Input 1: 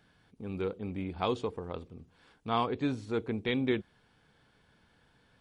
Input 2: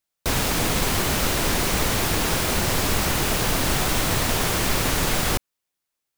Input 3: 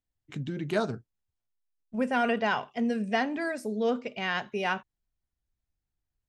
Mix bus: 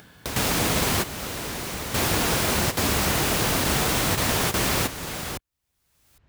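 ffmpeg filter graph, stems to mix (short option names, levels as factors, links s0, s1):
-filter_complex "[0:a]volume=0.119[s0];[1:a]volume=1[s1];[2:a]lowpass=2400,volume=0.299,asplit=2[s2][s3];[s3]apad=whole_len=272514[s4];[s1][s4]sidechaingate=range=0.251:threshold=0.00251:ratio=16:detection=peak[s5];[s0][s5][s2]amix=inputs=3:normalize=0,highpass=54,acompressor=mode=upward:threshold=0.0562:ratio=2.5"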